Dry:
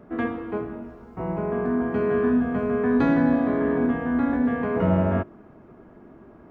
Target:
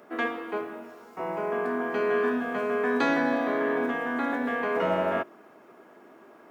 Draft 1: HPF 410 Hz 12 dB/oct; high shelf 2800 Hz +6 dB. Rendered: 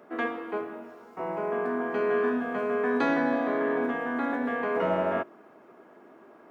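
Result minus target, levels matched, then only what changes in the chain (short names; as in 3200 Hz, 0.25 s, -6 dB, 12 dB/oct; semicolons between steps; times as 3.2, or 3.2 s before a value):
4000 Hz band -4.0 dB
change: high shelf 2800 Hz +14.5 dB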